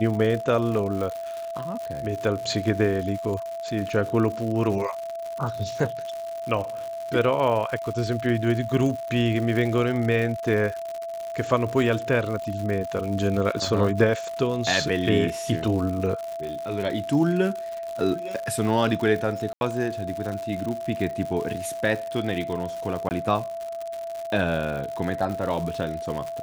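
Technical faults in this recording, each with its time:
crackle 140 per s -30 dBFS
whine 670 Hz -30 dBFS
19.53–19.61 s: dropout 81 ms
23.09–23.11 s: dropout 19 ms

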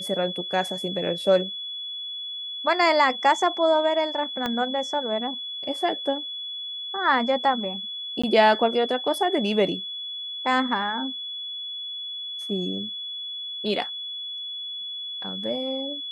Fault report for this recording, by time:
whine 3.4 kHz -31 dBFS
4.46 s: pop -13 dBFS
8.22–8.23 s: dropout 15 ms

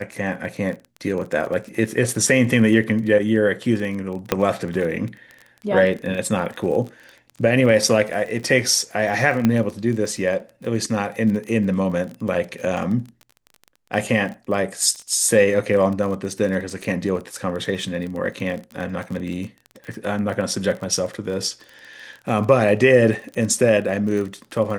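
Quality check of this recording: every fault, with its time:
crackle 27 per s -28 dBFS
4.32 s: pop -3 dBFS
9.45 s: pop -6 dBFS

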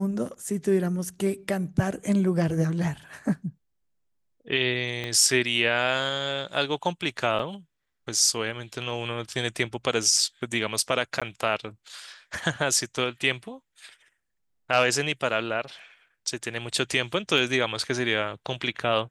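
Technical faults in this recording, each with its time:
5.04 s: pop -18 dBFS
7.39 s: dropout 4.3 ms
11.20–11.22 s: dropout 16 ms
17.38 s: dropout 2.2 ms

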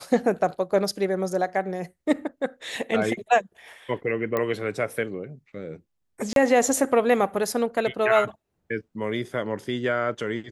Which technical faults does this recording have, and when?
4.37 s: pop -13 dBFS
6.33–6.36 s: dropout 32 ms

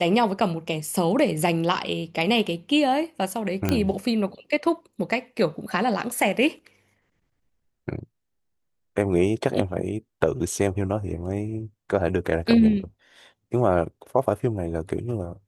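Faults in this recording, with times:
0.87 s: dropout 3.3 ms
3.69 s: pop -8 dBFS

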